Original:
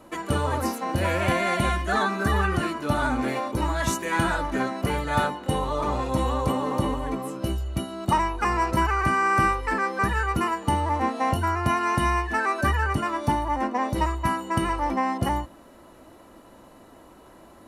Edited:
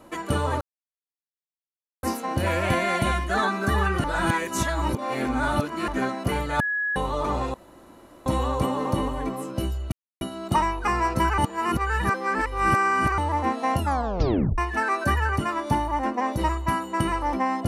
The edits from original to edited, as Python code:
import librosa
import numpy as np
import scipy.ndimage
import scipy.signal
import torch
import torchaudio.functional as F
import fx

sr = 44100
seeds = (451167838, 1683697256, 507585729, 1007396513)

y = fx.edit(x, sr, fx.insert_silence(at_s=0.61, length_s=1.42),
    fx.reverse_span(start_s=2.62, length_s=1.84),
    fx.bleep(start_s=5.18, length_s=0.36, hz=1680.0, db=-23.0),
    fx.insert_room_tone(at_s=6.12, length_s=0.72),
    fx.insert_silence(at_s=7.78, length_s=0.29),
    fx.reverse_span(start_s=8.95, length_s=1.8),
    fx.tape_stop(start_s=11.35, length_s=0.8), tone=tone)